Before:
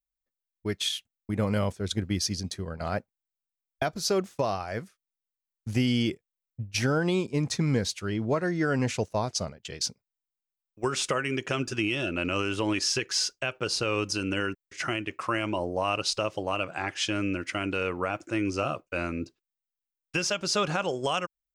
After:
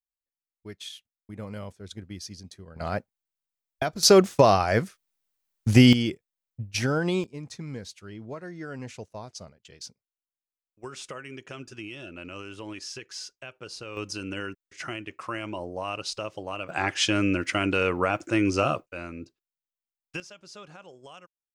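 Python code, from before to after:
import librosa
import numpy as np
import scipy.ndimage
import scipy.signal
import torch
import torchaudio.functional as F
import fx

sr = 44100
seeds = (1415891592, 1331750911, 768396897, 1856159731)

y = fx.gain(x, sr, db=fx.steps((0.0, -11.0), (2.76, 0.5), (4.03, 10.5), (5.93, 0.0), (7.24, -11.5), (13.97, -5.0), (16.69, 5.0), (18.86, -6.5), (20.2, -19.0)))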